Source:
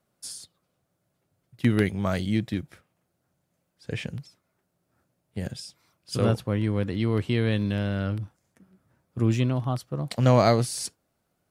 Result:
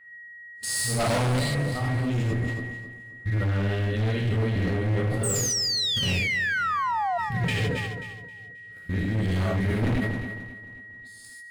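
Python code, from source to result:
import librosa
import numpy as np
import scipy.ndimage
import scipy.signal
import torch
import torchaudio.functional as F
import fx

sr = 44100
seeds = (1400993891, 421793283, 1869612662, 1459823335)

p1 = x[::-1].copy()
p2 = fx.peak_eq(p1, sr, hz=990.0, db=-5.5, octaves=0.25)
p3 = p2 + 10.0 ** (-42.0 / 20.0) * np.sin(2.0 * np.pi * 1900.0 * np.arange(len(p2)) / sr)
p4 = fx.level_steps(p3, sr, step_db=18)
p5 = fx.leveller(p4, sr, passes=1)
p6 = fx.low_shelf(p5, sr, hz=75.0, db=12.0)
p7 = fx.notch(p6, sr, hz=5800.0, q=5.1)
p8 = fx.rev_gated(p7, sr, seeds[0], gate_ms=170, shape='flat', drr_db=-6.0)
p9 = fx.spec_paint(p8, sr, seeds[1], shape='fall', start_s=5.23, length_s=1.95, low_hz=680.0, high_hz=8600.0, level_db=-26.0)
p10 = np.clip(p9, -10.0 ** (-22.5 / 20.0), 10.0 ** (-22.5 / 20.0))
p11 = p10 + fx.echo_feedback(p10, sr, ms=267, feedback_pct=49, wet_db=-13.5, dry=0)
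y = fx.sustainer(p11, sr, db_per_s=32.0)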